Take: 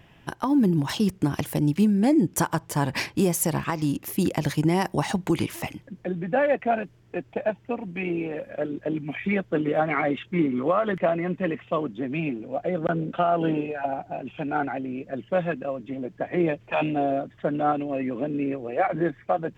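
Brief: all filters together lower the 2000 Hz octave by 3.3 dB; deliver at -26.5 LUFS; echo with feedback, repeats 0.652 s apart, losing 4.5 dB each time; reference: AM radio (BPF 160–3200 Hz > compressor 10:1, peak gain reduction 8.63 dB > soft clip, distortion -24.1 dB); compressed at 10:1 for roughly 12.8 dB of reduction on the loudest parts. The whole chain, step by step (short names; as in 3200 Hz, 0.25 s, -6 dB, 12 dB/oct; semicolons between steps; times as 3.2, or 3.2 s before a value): bell 2000 Hz -3.5 dB; compressor 10:1, threshold -30 dBFS; BPF 160–3200 Hz; feedback echo 0.652 s, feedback 60%, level -4.5 dB; compressor 10:1, threshold -34 dBFS; soft clip -27 dBFS; gain +13 dB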